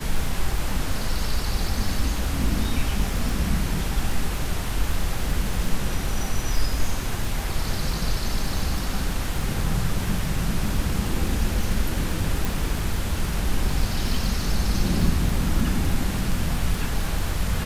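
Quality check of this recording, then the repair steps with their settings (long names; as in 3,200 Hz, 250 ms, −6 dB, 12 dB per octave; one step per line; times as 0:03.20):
surface crackle 37 per second −27 dBFS
0:12.45: click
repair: click removal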